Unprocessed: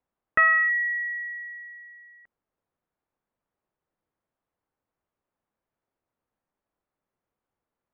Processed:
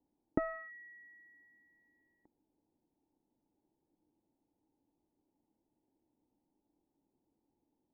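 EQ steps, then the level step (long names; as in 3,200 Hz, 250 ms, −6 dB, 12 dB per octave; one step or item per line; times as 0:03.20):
formant resonators in series u
high-shelf EQ 2,700 Hz −9 dB
+17.5 dB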